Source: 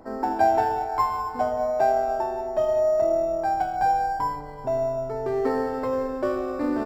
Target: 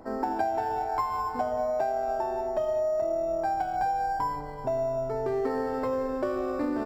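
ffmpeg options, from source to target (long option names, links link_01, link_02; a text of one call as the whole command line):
ffmpeg -i in.wav -af "acompressor=threshold=-25dB:ratio=6" out.wav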